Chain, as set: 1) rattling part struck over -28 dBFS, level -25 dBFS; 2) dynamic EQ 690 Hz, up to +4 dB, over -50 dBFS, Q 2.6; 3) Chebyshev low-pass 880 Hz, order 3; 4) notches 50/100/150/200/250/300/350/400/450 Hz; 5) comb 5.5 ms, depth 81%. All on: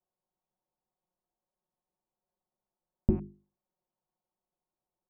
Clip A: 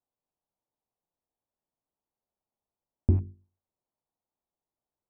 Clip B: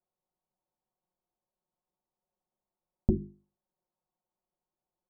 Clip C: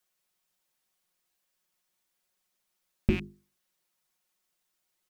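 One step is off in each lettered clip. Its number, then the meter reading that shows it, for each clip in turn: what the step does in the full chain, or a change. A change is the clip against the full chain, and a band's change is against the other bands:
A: 5, crest factor change -3.5 dB; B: 1, 1 kHz band -3.0 dB; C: 3, 1 kHz band +2.0 dB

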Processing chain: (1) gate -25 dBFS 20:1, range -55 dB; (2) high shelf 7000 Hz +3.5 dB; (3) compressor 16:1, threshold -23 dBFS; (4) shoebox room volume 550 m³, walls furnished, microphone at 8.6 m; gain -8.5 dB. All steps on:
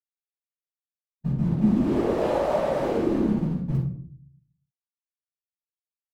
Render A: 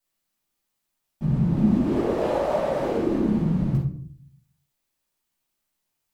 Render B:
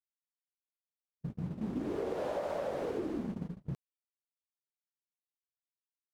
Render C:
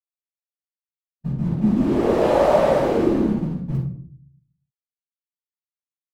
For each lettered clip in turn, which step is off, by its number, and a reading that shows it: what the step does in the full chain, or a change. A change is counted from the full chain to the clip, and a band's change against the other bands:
1, 125 Hz band +2.0 dB; 4, 125 Hz band -4.5 dB; 3, mean gain reduction 4.0 dB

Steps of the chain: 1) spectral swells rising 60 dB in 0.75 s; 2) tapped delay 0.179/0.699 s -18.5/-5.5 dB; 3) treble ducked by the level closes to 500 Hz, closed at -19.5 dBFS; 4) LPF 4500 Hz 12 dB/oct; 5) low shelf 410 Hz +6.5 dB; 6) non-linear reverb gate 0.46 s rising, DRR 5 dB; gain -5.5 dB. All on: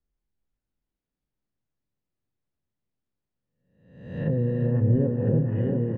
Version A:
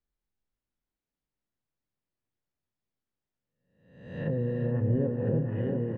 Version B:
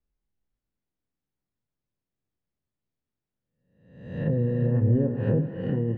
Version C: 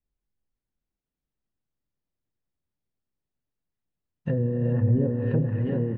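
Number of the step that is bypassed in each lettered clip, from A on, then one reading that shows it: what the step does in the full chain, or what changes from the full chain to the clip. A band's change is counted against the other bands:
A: 5, 2 kHz band +4.5 dB; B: 2, 2 kHz band +2.0 dB; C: 1, 2 kHz band +2.0 dB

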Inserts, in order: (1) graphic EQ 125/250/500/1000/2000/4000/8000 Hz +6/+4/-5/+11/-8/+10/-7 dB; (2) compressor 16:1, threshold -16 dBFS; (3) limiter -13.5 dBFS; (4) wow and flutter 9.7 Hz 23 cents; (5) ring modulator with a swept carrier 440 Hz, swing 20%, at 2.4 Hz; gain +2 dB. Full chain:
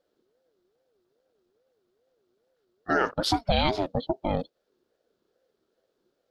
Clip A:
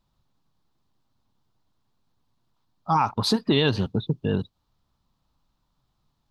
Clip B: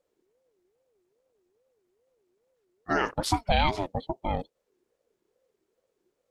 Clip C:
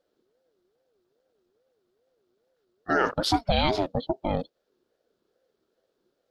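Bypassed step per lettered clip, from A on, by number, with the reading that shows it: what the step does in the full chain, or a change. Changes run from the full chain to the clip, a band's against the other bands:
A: 5, 125 Hz band +5.0 dB; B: 1, momentary loudness spread change +2 LU; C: 2, mean gain reduction 3.5 dB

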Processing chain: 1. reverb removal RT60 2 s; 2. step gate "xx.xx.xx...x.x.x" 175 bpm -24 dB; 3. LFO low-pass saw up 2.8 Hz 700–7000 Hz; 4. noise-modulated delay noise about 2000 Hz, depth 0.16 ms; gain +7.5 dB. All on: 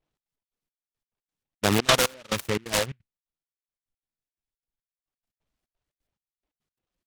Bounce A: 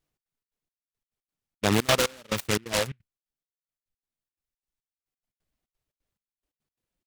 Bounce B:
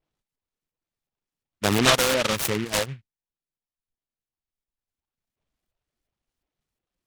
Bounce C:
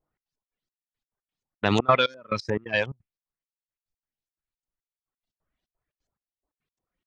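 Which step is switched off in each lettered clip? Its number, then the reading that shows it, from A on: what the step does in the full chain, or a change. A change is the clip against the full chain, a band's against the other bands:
3, loudness change -1.5 LU; 2, crest factor change -2.0 dB; 4, 8 kHz band -20.5 dB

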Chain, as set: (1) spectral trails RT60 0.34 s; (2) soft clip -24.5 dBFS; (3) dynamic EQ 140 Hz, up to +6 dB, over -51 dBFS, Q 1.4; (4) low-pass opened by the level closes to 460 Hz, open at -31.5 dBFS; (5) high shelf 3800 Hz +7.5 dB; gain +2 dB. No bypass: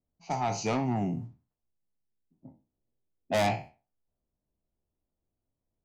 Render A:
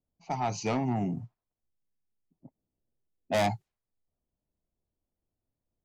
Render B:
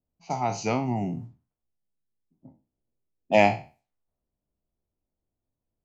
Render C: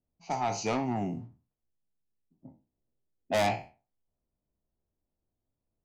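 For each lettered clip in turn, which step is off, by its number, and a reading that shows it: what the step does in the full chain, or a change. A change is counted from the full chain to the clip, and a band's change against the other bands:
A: 1, momentary loudness spread change +2 LU; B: 2, distortion -6 dB; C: 3, crest factor change +2.5 dB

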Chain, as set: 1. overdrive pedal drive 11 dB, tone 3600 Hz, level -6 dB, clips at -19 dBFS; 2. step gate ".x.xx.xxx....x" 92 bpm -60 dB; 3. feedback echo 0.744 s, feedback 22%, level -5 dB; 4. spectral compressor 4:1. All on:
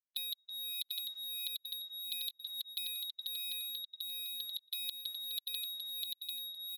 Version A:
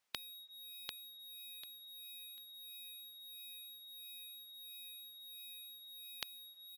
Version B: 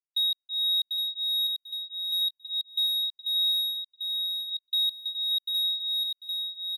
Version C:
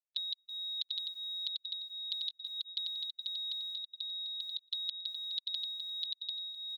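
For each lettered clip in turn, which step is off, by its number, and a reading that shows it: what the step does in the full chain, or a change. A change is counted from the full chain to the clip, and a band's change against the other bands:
2, crest factor change +10.5 dB; 4, crest factor change -12.5 dB; 1, loudness change +2.0 LU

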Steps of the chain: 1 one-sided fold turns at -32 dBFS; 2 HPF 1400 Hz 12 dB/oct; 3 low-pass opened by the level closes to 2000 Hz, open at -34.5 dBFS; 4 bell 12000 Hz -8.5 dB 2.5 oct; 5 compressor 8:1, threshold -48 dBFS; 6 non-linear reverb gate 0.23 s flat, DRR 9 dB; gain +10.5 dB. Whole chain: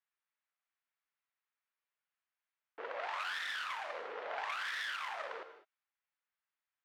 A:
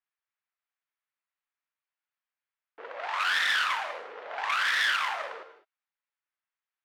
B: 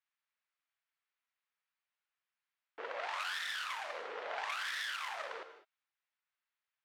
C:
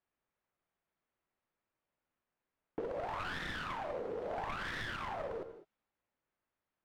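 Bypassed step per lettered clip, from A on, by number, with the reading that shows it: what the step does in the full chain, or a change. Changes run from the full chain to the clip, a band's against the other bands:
5, 500 Hz band -9.5 dB; 4, 8 kHz band +5.5 dB; 2, 250 Hz band +21.0 dB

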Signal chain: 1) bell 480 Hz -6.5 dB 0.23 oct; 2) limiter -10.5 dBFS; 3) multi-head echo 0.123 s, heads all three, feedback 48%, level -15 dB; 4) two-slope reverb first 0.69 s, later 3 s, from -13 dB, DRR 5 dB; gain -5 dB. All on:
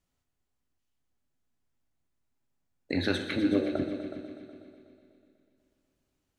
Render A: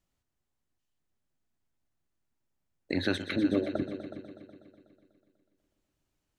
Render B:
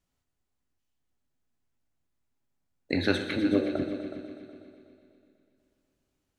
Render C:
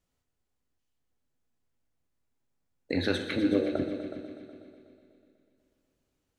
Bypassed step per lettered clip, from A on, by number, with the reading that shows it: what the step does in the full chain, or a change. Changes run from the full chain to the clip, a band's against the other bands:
4, momentary loudness spread change -2 LU; 2, momentary loudness spread change -2 LU; 1, 500 Hz band +2.0 dB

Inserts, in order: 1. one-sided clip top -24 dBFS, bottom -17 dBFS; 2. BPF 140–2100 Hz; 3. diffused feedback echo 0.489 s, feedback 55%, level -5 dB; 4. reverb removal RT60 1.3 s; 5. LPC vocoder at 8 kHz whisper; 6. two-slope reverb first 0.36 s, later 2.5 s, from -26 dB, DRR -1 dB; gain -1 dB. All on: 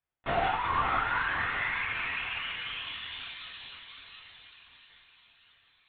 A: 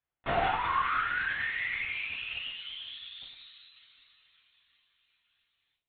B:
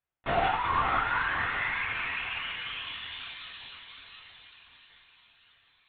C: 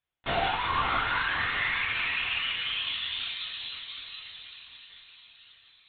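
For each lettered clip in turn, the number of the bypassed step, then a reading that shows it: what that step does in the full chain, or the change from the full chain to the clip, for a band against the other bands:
3, momentary loudness spread change -2 LU; 1, distortion -14 dB; 2, 4 kHz band +7.0 dB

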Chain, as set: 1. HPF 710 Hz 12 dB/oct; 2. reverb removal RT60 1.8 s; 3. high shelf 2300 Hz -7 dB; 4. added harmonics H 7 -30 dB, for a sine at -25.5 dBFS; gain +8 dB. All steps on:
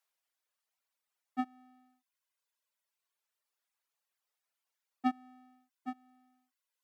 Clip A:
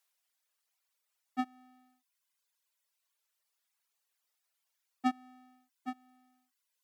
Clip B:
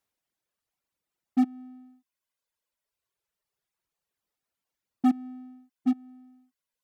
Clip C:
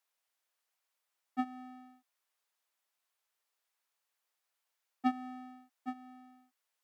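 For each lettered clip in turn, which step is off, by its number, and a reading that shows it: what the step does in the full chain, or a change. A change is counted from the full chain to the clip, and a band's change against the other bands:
3, 4 kHz band +3.5 dB; 1, crest factor change -10.5 dB; 2, momentary loudness spread change +4 LU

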